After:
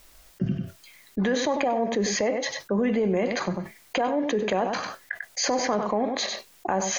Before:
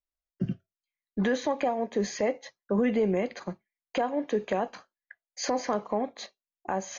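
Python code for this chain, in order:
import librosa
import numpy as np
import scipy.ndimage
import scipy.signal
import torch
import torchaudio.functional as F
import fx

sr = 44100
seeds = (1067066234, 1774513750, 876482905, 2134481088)

y = x + 10.0 ** (-13.5 / 20.0) * np.pad(x, (int(96 * sr / 1000.0), 0))[:len(x)]
y = fx.env_flatten(y, sr, amount_pct=70)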